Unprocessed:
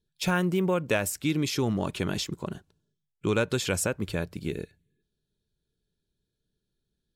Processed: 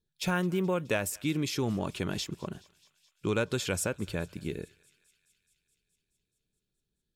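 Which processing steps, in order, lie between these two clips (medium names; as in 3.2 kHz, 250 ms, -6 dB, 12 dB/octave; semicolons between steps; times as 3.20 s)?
thinning echo 212 ms, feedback 76%, high-pass 1.2 kHz, level -23 dB; trim -3.5 dB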